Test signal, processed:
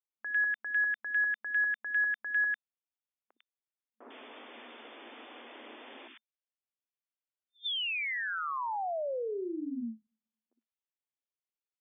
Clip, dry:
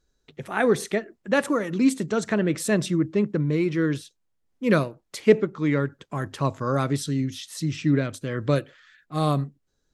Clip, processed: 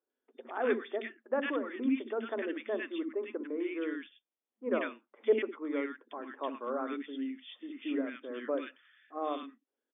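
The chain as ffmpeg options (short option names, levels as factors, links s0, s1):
-filter_complex "[0:a]afftfilt=real='re*between(b*sr/4096,220,3600)':imag='im*between(b*sr/4096,220,3600)':win_size=4096:overlap=0.75,acrossover=split=300|1400[s0][s1][s2];[s0]adelay=60[s3];[s2]adelay=100[s4];[s3][s1][s4]amix=inputs=3:normalize=0,volume=0.422"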